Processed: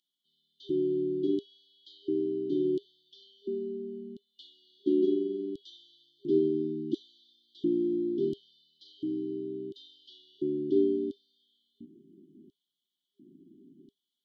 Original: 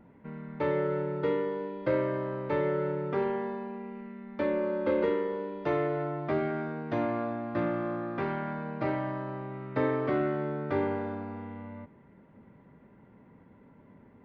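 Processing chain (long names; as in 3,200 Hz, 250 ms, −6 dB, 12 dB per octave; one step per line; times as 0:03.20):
parametric band 160 Hz +7.5 dB 0.22 octaves
auto-filter high-pass square 0.72 Hz 320–3,700 Hz
brick-wall band-stop 400–2,900 Hz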